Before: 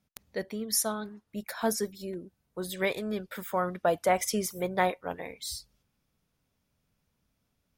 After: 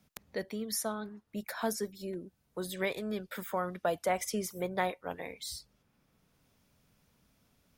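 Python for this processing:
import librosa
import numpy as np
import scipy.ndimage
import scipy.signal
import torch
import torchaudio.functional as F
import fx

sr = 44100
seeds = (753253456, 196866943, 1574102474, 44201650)

y = fx.band_squash(x, sr, depth_pct=40)
y = y * librosa.db_to_amplitude(-4.0)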